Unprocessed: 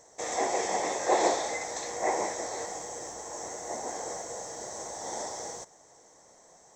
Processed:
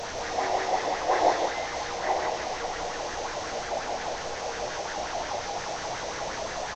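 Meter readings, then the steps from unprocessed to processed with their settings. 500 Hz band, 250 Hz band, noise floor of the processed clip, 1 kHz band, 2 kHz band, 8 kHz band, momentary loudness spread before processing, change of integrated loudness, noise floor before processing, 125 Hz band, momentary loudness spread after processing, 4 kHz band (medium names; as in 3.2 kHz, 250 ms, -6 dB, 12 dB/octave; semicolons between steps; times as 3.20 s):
+2.5 dB, +0.5 dB, -35 dBFS, +4.5 dB, +5.5 dB, -4.0 dB, 12 LU, +2.5 dB, -58 dBFS, +8.5 dB, 8 LU, +6.0 dB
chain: one-bit delta coder 32 kbps, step -26.5 dBFS; bass shelf 63 Hz +11 dB; loudspeakers at several distances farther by 11 m -3 dB, 63 m -4 dB; sweeping bell 5.6 Hz 600–1700 Hz +10 dB; trim -5.5 dB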